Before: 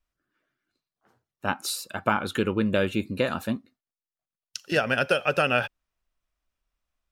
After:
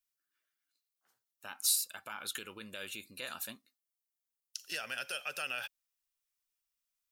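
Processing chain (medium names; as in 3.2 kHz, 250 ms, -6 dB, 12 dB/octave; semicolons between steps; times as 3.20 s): peak limiter -17 dBFS, peak gain reduction 11 dB; pre-emphasis filter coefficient 0.97; trim +2.5 dB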